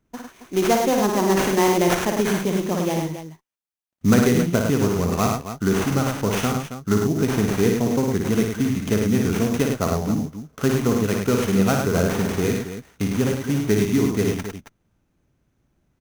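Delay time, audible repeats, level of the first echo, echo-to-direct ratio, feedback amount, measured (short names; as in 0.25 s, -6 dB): 57 ms, 3, -4.5 dB, -1.0 dB, no steady repeat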